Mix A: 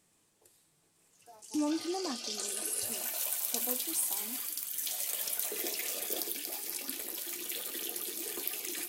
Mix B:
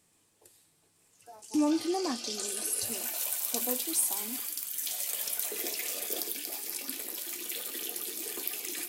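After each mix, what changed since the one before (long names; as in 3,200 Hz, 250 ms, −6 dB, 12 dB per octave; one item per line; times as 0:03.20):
speech +5.0 dB
background: send +10.0 dB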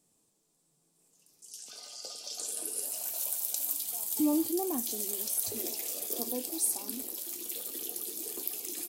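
speech: entry +2.65 s
master: add parametric band 1,900 Hz −12.5 dB 1.7 octaves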